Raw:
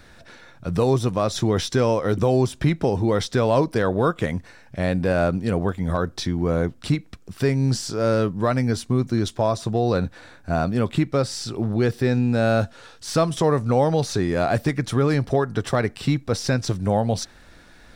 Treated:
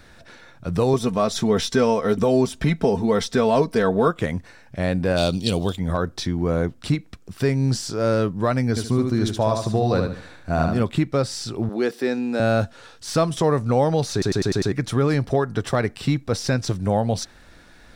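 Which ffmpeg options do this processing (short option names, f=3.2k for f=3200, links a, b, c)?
-filter_complex "[0:a]asettb=1/sr,asplit=3[a][b][c];[a]atrim=end=0.934[d];[b]atrim=start=0.93:end=4.08,asetpts=PTS-STARTPTS,afade=t=in:d=0.004:c=qsin,afade=t=out:st=3.146:d=0.004:c=qsin,aecho=1:1:4.5:0.65,atrim=end_sample=138915[e];[c]atrim=start=4.076[f];[d][e]acrossfade=d=0.004:c1=hsin:c2=qsin[g];[g][f]acrossfade=d=0.004:c1=qsin:c2=hsin,asplit=3[h][i][j];[h]afade=t=out:st=5.16:d=0.02[k];[i]highshelf=f=2.5k:t=q:w=3:g=12,afade=t=in:st=5.16:d=0.02,afade=t=out:st=5.75:d=0.02[l];[j]afade=t=in:st=5.75:d=0.02[m];[k][l][m]amix=inputs=3:normalize=0,asettb=1/sr,asplit=3[n][o][p];[n]atrim=end=8.694[q];[o]atrim=start=8.69:end=10.83,asetpts=PTS-STARTPTS,afade=t=in:d=0.004:c=qsin,afade=t=out:st=2.136:d=0.004:c=qsin,aecho=1:1:74|148|222|296:0.562|0.169|0.0506|0.0152,atrim=end_sample=94374[r];[p]atrim=start=10.826[s];[q][r]acrossfade=d=0.004:c1=hsin:c2=qsin[t];[t][s]acrossfade=d=0.004:c1=qsin:c2=hsin,asettb=1/sr,asplit=3[u][v][w];[u]atrim=end=11.694[x];[v]atrim=start=11.69:end=12.4,asetpts=PTS-STARTPTS,afade=t=in:d=0.004:c=qsin,afade=t=out:st=0.706:d=0.004:c=qsin,highpass=f=240:w=0.5412,highpass=f=240:w=1.3066[y];[w]atrim=start=12.396[z];[x][y]acrossfade=d=0.004:c1=hsin:c2=qsin[aa];[aa][z]acrossfade=d=0.004:c1=qsin:c2=hsin,asplit=7[ab][ac][ad][ae][af][ag][ah];[ab]atrim=end=14.222[ai];[ac]atrim=start=14.118:end=14.222[aj];[ad]atrim=start=14.118:end=14.222[ak];[ae]atrim=start=14.118:end=14.222[al];[af]atrim=start=14.118:end=14.222[am];[ag]atrim=start=14.118:end=14.222[an];[ah]atrim=start=14.718[ao];[ai][aj]acrossfade=d=0.004:c1=hsin:c2=hsin[ap];[ap][ak]acrossfade=d=0.004:c1=hsin:c2=hsin[aq];[aq][al]acrossfade=d=0.004:c1=hsin:c2=hsin[ar];[ar][am]acrossfade=d=0.004:c1=hsin:c2=hsin[as];[as][an]acrossfade=d=0.004:c1=hsin:c2=hsin[at];[at][ao]acrossfade=d=0.004:c1=hsin:c2=hsin"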